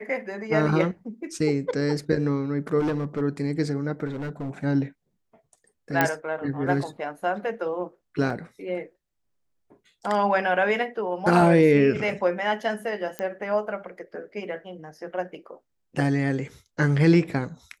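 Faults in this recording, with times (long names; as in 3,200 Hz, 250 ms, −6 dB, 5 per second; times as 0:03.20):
0:02.79–0:03.22: clipping −22 dBFS
0:04.06–0:04.51: clipping −27.5 dBFS
0:06.01: click −6 dBFS
0:08.30: drop-out 3.9 ms
0:13.19: click −15 dBFS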